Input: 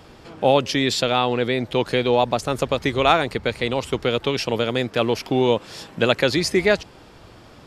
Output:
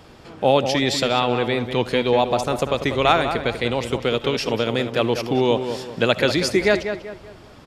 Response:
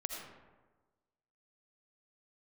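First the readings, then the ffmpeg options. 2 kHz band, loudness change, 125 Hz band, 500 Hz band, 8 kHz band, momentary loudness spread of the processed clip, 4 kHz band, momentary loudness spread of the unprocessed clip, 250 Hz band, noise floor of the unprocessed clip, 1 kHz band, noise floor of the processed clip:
+0.5 dB, +0.5 dB, +0.5 dB, +0.5 dB, 0.0 dB, 5 LU, 0.0 dB, 5 LU, +0.5 dB, −47 dBFS, +0.5 dB, −45 dBFS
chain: -filter_complex "[0:a]asplit=2[link_01][link_02];[link_02]adelay=193,lowpass=frequency=2400:poles=1,volume=-8dB,asplit=2[link_03][link_04];[link_04]adelay=193,lowpass=frequency=2400:poles=1,volume=0.39,asplit=2[link_05][link_06];[link_06]adelay=193,lowpass=frequency=2400:poles=1,volume=0.39,asplit=2[link_07][link_08];[link_08]adelay=193,lowpass=frequency=2400:poles=1,volume=0.39[link_09];[link_01][link_03][link_05][link_07][link_09]amix=inputs=5:normalize=0,asplit=2[link_10][link_11];[1:a]atrim=start_sample=2205,atrim=end_sample=3528[link_12];[link_11][link_12]afir=irnorm=-1:irlink=0,volume=-2dB[link_13];[link_10][link_13]amix=inputs=2:normalize=0,volume=-4.5dB"

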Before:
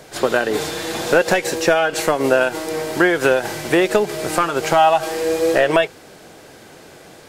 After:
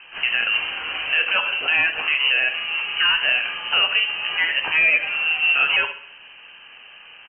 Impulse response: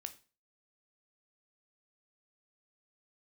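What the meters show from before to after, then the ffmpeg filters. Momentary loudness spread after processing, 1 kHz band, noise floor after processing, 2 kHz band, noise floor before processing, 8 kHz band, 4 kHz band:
6 LU, −11.5 dB, −45 dBFS, +4.0 dB, −43 dBFS, below −40 dB, +8.0 dB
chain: -filter_complex "[1:a]atrim=start_sample=2205[link_01];[0:a][link_01]afir=irnorm=-1:irlink=0,alimiter=limit=-12.5dB:level=0:latency=1:release=17,aecho=1:1:67|134|201|268|335:0.188|0.0942|0.0471|0.0235|0.0118,lowpass=frequency=2700:width_type=q:width=0.5098,lowpass=frequency=2700:width_type=q:width=0.6013,lowpass=frequency=2700:width_type=q:width=0.9,lowpass=frequency=2700:width_type=q:width=2.563,afreqshift=-3200,volume=2.5dB"

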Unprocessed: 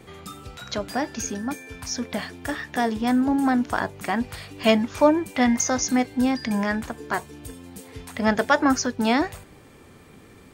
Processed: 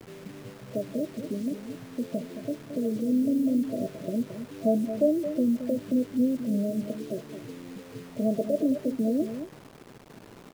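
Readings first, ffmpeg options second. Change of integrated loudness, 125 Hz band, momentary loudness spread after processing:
−5.0 dB, −3.0 dB, 16 LU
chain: -af "afftfilt=real='re*between(b*sr/4096,100,670)':imag='im*between(b*sr/4096,100,670)':win_size=4096:overlap=0.75,acompressor=threshold=-28dB:ratio=1.5,acrusher=bits=7:mix=0:aa=0.000001,aecho=1:1:221:0.316"

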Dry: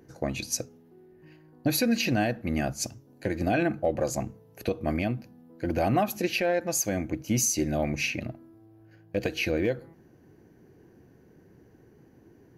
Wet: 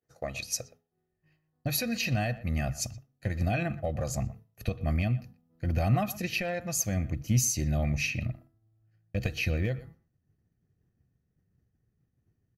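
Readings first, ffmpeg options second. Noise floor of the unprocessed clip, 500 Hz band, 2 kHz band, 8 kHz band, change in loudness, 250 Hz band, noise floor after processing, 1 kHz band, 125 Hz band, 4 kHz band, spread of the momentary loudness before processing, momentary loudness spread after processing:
−57 dBFS, −7.5 dB, −2.5 dB, −2.0 dB, −2.5 dB, −5.5 dB, −79 dBFS, −5.5 dB, +4.5 dB, −3.0 dB, 10 LU, 11 LU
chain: -filter_complex "[0:a]agate=range=-33dB:threshold=-43dB:ratio=3:detection=peak,lowshelf=frequency=380:gain=-9.5,aecho=1:1:1.6:0.52,asubboost=boost=9.5:cutoff=170,asplit=2[link_01][link_02];[link_02]adelay=120,highpass=300,lowpass=3400,asoftclip=type=hard:threshold=-20.5dB,volume=-17dB[link_03];[link_01][link_03]amix=inputs=2:normalize=0,volume=-3dB"

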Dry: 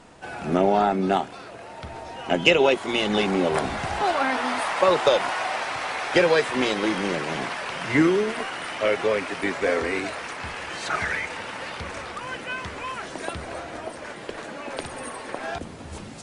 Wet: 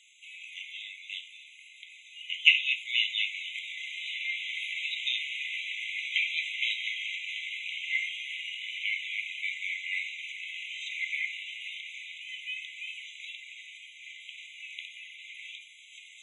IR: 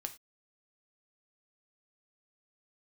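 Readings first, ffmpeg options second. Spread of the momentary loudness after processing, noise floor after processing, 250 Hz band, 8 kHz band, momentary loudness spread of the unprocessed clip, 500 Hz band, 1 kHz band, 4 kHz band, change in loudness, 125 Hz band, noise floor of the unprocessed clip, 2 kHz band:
18 LU, −53 dBFS, below −40 dB, −12.0 dB, 16 LU, below −40 dB, below −40 dB, 0.0 dB, −6.5 dB, below −40 dB, −40 dBFS, −3.0 dB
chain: -filter_complex "[0:a]highshelf=frequency=2300:gain=10,acrossover=split=330[link_01][link_02];[link_01]aeval=exprs='0.0473*(abs(mod(val(0)/0.0473+3,4)-2)-1)':channel_layout=same[link_03];[link_03][link_02]amix=inputs=2:normalize=0,acrossover=split=4000[link_04][link_05];[link_05]acompressor=threshold=-56dB:ratio=4:attack=1:release=60[link_06];[link_04][link_06]amix=inputs=2:normalize=0[link_07];[1:a]atrim=start_sample=2205[link_08];[link_07][link_08]afir=irnorm=-1:irlink=0,afftfilt=real='re*eq(mod(floor(b*sr/1024/2000),2),1)':imag='im*eq(mod(floor(b*sr/1024/2000),2),1)':win_size=1024:overlap=0.75,volume=-2dB"

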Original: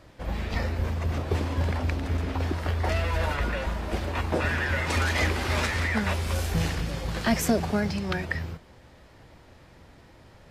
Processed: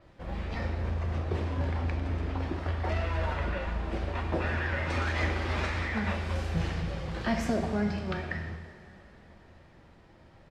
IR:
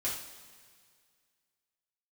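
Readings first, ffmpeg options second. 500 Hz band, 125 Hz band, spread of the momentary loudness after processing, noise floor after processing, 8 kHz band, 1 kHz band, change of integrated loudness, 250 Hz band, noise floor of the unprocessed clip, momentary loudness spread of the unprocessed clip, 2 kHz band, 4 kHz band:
−4.0 dB, −3.5 dB, 6 LU, −56 dBFS, −13.5 dB, −4.0 dB, −4.0 dB, −3.5 dB, −53 dBFS, 6 LU, −5.5 dB, −7.5 dB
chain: -filter_complex "[0:a]aemphasis=mode=reproduction:type=50kf,asplit=2[link_01][link_02];[1:a]atrim=start_sample=2205,asetrate=23814,aresample=44100[link_03];[link_02][link_03]afir=irnorm=-1:irlink=0,volume=-9dB[link_04];[link_01][link_04]amix=inputs=2:normalize=0,aresample=32000,aresample=44100,adynamicequalizer=threshold=0.00398:dfrequency=7300:dqfactor=0.7:tfrequency=7300:tqfactor=0.7:attack=5:release=100:ratio=0.375:range=3:mode=cutabove:tftype=highshelf,volume=-8dB"

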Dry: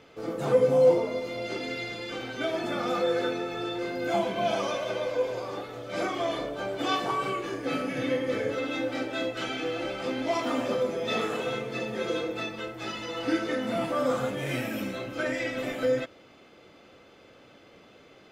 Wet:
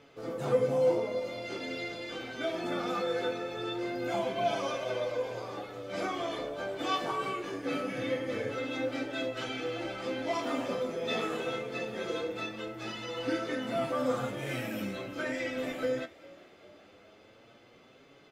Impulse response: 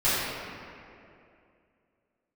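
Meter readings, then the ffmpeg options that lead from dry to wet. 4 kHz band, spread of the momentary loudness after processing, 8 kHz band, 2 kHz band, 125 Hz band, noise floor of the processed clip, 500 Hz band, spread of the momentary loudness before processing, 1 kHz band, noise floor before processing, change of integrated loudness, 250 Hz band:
−3.5 dB, 7 LU, −4.0 dB, −4.0 dB, −4.0 dB, −58 dBFS, −5.0 dB, 7 LU, −3.5 dB, −55 dBFS, −4.5 dB, −4.5 dB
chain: -filter_complex "[0:a]flanger=delay=7:depth=5.5:regen=45:speed=0.22:shape=triangular,asplit=2[link_01][link_02];[link_02]asplit=4[link_03][link_04][link_05][link_06];[link_03]adelay=399,afreqshift=44,volume=-22dB[link_07];[link_04]adelay=798,afreqshift=88,volume=-27.5dB[link_08];[link_05]adelay=1197,afreqshift=132,volume=-33dB[link_09];[link_06]adelay=1596,afreqshift=176,volume=-38.5dB[link_10];[link_07][link_08][link_09][link_10]amix=inputs=4:normalize=0[link_11];[link_01][link_11]amix=inputs=2:normalize=0"

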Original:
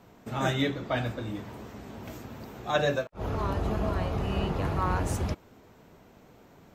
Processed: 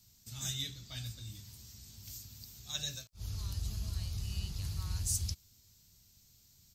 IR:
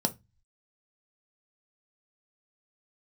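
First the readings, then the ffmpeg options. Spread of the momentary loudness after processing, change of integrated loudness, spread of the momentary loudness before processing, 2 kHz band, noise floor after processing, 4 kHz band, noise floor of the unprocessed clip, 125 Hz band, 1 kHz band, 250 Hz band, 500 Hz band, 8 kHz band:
15 LU, −9.0 dB, 15 LU, −18.5 dB, −65 dBFS, −1.5 dB, −56 dBFS, −7.5 dB, −27.5 dB, −20.0 dB, −31.0 dB, +7.5 dB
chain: -af "firequalizer=gain_entry='entry(100,0);entry(150,-9);entry(290,-21);entry(510,-27);entry(4600,13)':delay=0.05:min_phase=1,volume=-5.5dB"

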